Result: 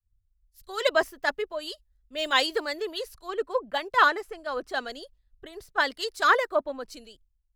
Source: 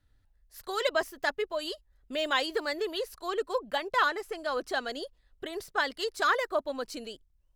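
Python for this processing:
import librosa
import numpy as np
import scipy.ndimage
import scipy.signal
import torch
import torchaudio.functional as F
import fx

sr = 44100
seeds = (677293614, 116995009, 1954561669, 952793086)

y = fx.band_widen(x, sr, depth_pct=100)
y = y * 10.0 ** (2.0 / 20.0)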